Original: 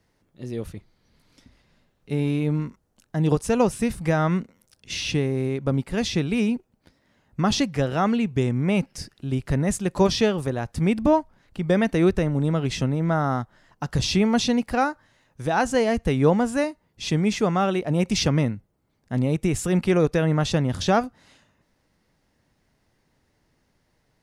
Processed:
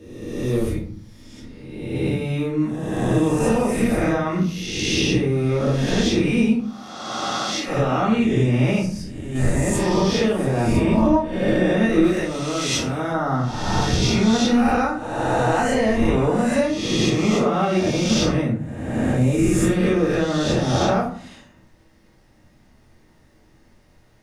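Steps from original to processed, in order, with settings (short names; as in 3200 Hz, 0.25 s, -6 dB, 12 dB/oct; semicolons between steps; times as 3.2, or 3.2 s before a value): spectral swells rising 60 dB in 1.30 s; compressor 5:1, threshold -25 dBFS, peak gain reduction 13 dB; 6.52–7.67 HPF 450 Hz -> 1300 Hz 6 dB/oct; 8.85–9.35 gate -25 dBFS, range -11 dB; 12.04–13.12 tilt +2.5 dB/oct; reverb RT60 0.50 s, pre-delay 3 ms, DRR -6.5 dB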